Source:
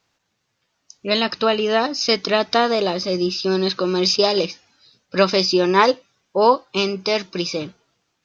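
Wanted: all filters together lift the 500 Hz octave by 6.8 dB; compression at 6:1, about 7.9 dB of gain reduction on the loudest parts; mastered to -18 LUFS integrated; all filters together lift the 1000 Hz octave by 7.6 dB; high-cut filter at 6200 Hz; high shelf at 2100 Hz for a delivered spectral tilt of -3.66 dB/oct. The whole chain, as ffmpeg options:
-af "lowpass=6.2k,equalizer=f=500:t=o:g=7,equalizer=f=1k:t=o:g=8,highshelf=f=2.1k:g=-6,acompressor=threshold=-11dB:ratio=6"

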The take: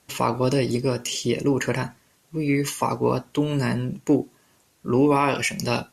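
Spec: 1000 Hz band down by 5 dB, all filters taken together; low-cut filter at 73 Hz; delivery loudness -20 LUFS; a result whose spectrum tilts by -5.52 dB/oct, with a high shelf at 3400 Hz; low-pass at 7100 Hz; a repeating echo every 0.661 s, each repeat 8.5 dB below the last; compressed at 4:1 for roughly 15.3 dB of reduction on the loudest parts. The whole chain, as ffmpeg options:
-af "highpass=73,lowpass=7.1k,equalizer=f=1k:t=o:g=-5,highshelf=f=3.4k:g=-9,acompressor=threshold=-34dB:ratio=4,aecho=1:1:661|1322|1983|2644:0.376|0.143|0.0543|0.0206,volume=16.5dB"

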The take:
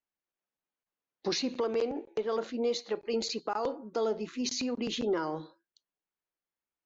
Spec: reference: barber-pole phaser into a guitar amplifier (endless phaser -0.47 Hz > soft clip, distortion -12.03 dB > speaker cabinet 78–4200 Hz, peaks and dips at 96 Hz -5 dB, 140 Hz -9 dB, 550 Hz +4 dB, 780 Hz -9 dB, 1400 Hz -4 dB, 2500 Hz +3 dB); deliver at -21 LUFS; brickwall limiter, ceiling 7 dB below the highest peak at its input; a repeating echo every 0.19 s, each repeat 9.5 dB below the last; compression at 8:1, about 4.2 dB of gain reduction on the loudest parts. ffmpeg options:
-filter_complex "[0:a]acompressor=threshold=-30dB:ratio=8,alimiter=level_in=4.5dB:limit=-24dB:level=0:latency=1,volume=-4.5dB,aecho=1:1:190|380|570|760:0.335|0.111|0.0365|0.012,asplit=2[a][b];[b]afreqshift=-0.47[c];[a][c]amix=inputs=2:normalize=1,asoftclip=threshold=-37.5dB,highpass=78,equalizer=f=96:t=q:w=4:g=-5,equalizer=f=140:t=q:w=4:g=-9,equalizer=f=550:t=q:w=4:g=4,equalizer=f=780:t=q:w=4:g=-9,equalizer=f=1.4k:t=q:w=4:g=-4,equalizer=f=2.5k:t=q:w=4:g=3,lowpass=f=4.2k:w=0.5412,lowpass=f=4.2k:w=1.3066,volume=23dB"

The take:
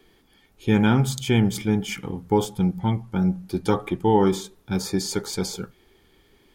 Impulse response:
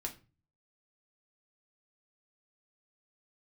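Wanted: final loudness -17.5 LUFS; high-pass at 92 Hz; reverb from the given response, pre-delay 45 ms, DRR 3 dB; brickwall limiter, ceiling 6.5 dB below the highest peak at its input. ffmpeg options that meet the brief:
-filter_complex "[0:a]highpass=92,alimiter=limit=-13.5dB:level=0:latency=1,asplit=2[a][b];[1:a]atrim=start_sample=2205,adelay=45[c];[b][c]afir=irnorm=-1:irlink=0,volume=-2.5dB[d];[a][d]amix=inputs=2:normalize=0,volume=6.5dB"

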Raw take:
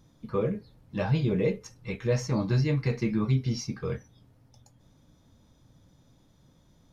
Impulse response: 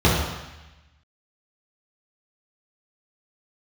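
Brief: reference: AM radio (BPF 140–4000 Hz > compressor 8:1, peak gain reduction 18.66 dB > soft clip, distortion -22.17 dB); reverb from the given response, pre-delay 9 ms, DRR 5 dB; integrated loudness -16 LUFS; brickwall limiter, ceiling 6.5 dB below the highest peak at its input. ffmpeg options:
-filter_complex "[0:a]alimiter=limit=-21dB:level=0:latency=1,asplit=2[a][b];[1:a]atrim=start_sample=2205,adelay=9[c];[b][c]afir=irnorm=-1:irlink=0,volume=-26.5dB[d];[a][d]amix=inputs=2:normalize=0,highpass=140,lowpass=4k,acompressor=threshold=-37dB:ratio=8,asoftclip=threshold=-31dB,volume=26.5dB"

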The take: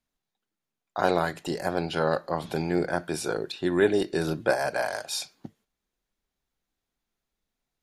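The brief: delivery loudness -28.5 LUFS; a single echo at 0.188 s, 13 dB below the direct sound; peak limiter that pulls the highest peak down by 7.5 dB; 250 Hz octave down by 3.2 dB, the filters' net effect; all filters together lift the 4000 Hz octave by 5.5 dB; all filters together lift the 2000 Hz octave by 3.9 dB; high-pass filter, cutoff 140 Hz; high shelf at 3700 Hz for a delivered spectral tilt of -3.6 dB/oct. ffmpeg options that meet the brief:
-af "highpass=140,equalizer=f=250:t=o:g=-4.5,equalizer=f=2k:t=o:g=5,highshelf=f=3.7k:g=-4,equalizer=f=4k:t=o:g=8,alimiter=limit=-15.5dB:level=0:latency=1,aecho=1:1:188:0.224,volume=0.5dB"

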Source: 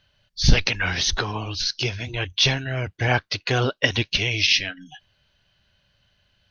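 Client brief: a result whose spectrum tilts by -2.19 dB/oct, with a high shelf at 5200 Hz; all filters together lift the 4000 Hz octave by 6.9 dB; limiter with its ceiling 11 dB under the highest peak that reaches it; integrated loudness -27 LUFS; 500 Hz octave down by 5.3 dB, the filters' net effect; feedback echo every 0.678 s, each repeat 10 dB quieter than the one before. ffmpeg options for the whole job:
-af "equalizer=f=500:t=o:g=-7,equalizer=f=4k:t=o:g=5.5,highshelf=f=5.2k:g=7.5,alimiter=limit=-8.5dB:level=0:latency=1,aecho=1:1:678|1356|2034|2712:0.316|0.101|0.0324|0.0104,volume=-6dB"

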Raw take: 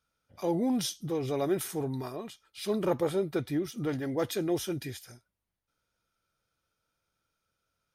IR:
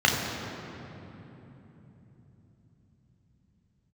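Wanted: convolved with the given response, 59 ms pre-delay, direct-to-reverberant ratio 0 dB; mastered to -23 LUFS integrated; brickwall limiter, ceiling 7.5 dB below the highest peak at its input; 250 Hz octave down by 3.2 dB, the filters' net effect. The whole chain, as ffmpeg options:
-filter_complex "[0:a]equalizer=f=250:t=o:g=-4.5,alimiter=level_in=0.5dB:limit=-24dB:level=0:latency=1,volume=-0.5dB,asplit=2[a][b];[1:a]atrim=start_sample=2205,adelay=59[c];[b][c]afir=irnorm=-1:irlink=0,volume=-18dB[d];[a][d]amix=inputs=2:normalize=0,volume=9dB"

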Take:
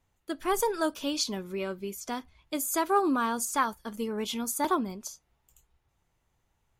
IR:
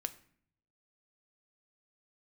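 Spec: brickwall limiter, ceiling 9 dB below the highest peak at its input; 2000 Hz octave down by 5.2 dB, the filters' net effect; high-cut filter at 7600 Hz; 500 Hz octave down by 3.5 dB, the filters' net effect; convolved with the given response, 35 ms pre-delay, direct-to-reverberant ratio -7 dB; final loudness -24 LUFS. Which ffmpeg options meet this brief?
-filter_complex "[0:a]lowpass=7.6k,equalizer=f=500:t=o:g=-4.5,equalizer=f=2k:t=o:g=-7,alimiter=level_in=2dB:limit=-24dB:level=0:latency=1,volume=-2dB,asplit=2[a][b];[1:a]atrim=start_sample=2205,adelay=35[c];[b][c]afir=irnorm=-1:irlink=0,volume=8dB[d];[a][d]amix=inputs=2:normalize=0,volume=4.5dB"

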